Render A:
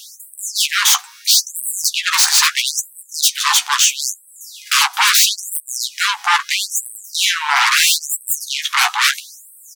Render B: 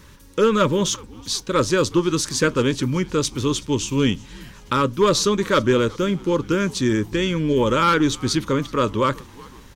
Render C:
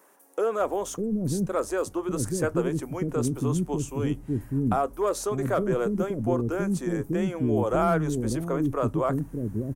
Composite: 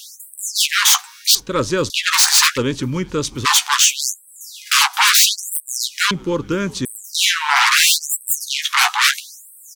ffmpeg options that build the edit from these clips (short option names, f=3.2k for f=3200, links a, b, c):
-filter_complex "[1:a]asplit=3[a][b][c];[0:a]asplit=4[d][e][f][g];[d]atrim=end=1.352[h];[a]atrim=start=1.348:end=1.902[i];[e]atrim=start=1.898:end=2.58[j];[b]atrim=start=2.56:end=3.46[k];[f]atrim=start=3.44:end=6.112[l];[c]atrim=start=6.108:end=6.852[m];[g]atrim=start=6.848[n];[h][i]acrossfade=d=0.004:c1=hsin:c2=hsin[o];[o][j]acrossfade=d=0.004:c1=hsin:c2=hsin[p];[p][k]acrossfade=d=0.02:c1=tri:c2=tri[q];[q][l]acrossfade=d=0.02:c1=tri:c2=tri[r];[r][m]acrossfade=d=0.004:c1=hsin:c2=hsin[s];[s][n]acrossfade=d=0.004:c1=hsin:c2=hsin"